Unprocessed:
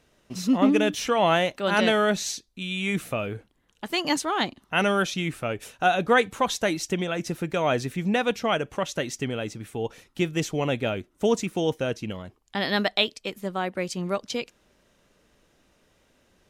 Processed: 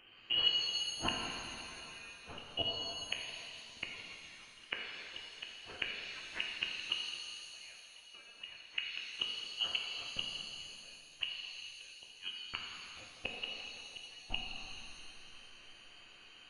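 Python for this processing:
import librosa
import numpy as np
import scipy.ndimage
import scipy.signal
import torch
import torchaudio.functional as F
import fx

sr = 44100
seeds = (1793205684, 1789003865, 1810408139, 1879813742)

y = fx.freq_invert(x, sr, carrier_hz=3100)
y = fx.gate_flip(y, sr, shuts_db=-23.0, range_db=-38)
y = fx.rev_shimmer(y, sr, seeds[0], rt60_s=2.4, semitones=7, shimmer_db=-8, drr_db=-1.0)
y = y * librosa.db_to_amplitude(2.0)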